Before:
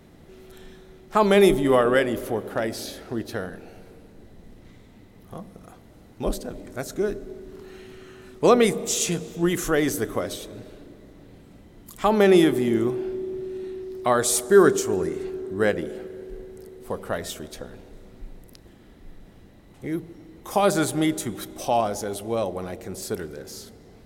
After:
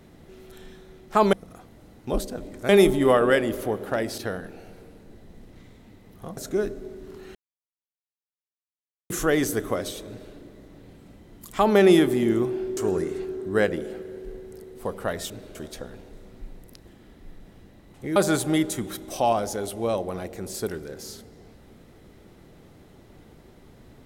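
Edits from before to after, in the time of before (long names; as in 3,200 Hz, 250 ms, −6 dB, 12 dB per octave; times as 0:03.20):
0:02.82–0:03.27: remove
0:05.46–0:06.82: move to 0:01.33
0:07.80–0:09.55: silence
0:10.53–0:10.78: duplicate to 0:17.35
0:13.22–0:14.82: remove
0:19.96–0:20.64: remove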